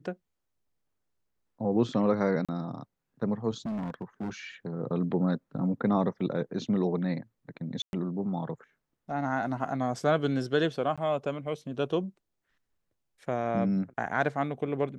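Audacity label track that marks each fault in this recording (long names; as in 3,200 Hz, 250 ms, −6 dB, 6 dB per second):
2.450000	2.490000	drop-out 36 ms
3.650000	4.300000	clipping −30.5 dBFS
7.820000	7.930000	drop-out 111 ms
10.960000	10.980000	drop-out 16 ms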